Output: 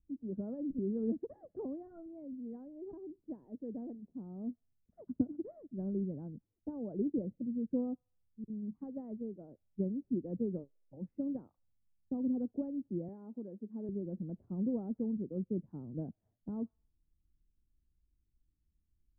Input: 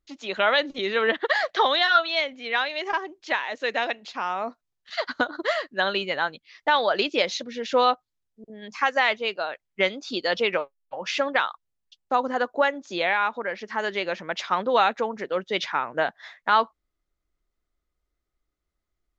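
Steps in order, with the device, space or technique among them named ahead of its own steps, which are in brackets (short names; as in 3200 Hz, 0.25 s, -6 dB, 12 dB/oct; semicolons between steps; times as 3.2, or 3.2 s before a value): 13.08–13.89 HPF 220 Hz; the neighbour's flat through the wall (LPF 260 Hz 24 dB/oct; bell 92 Hz +5 dB 0.85 oct); thin delay 66 ms, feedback 56%, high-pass 3800 Hz, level -8 dB; gain +4 dB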